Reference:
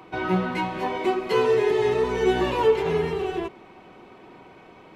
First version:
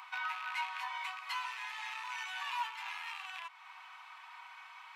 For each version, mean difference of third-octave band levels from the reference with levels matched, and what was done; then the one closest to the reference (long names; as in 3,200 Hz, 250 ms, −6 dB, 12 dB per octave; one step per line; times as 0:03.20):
16.5 dB: loose part that buzzes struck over −32 dBFS, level −25 dBFS
downward compressor 2 to 1, threshold −39 dBFS, peak gain reduction 13.5 dB
Butterworth high-pass 930 Hz 48 dB per octave
level +2 dB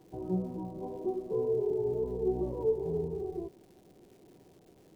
8.5 dB: Gaussian smoothing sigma 15 samples
surface crackle 440 per second −49 dBFS
parametric band 230 Hz −5 dB 0.36 octaves
level −5.5 dB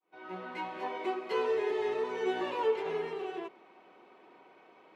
4.0 dB: fade in at the beginning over 0.71 s
high-pass filter 350 Hz 12 dB per octave
high-shelf EQ 6,700 Hz −11.5 dB
level −8.5 dB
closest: third